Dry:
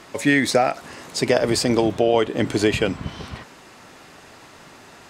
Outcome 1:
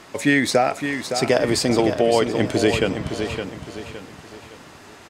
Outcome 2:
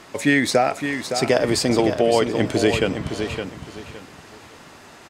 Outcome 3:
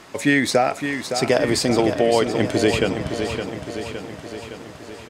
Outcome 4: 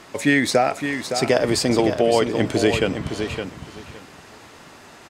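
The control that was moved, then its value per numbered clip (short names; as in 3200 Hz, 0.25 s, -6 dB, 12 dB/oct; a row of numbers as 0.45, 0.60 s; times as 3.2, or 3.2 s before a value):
feedback echo, feedback: 38, 26, 60, 18%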